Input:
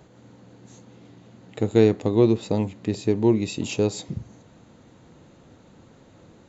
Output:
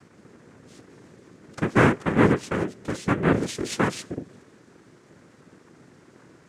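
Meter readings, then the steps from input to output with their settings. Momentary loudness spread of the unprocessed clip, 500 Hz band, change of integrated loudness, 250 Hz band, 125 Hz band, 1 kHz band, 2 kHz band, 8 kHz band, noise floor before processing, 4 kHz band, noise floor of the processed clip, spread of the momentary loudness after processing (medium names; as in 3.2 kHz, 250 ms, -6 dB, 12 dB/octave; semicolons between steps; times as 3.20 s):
11 LU, -3.5 dB, -1.0 dB, -1.5 dB, 0.0 dB, +9.0 dB, +12.5 dB, no reading, -53 dBFS, 0.0 dB, -55 dBFS, 12 LU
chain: noise-vocoded speech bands 3; trim -1 dB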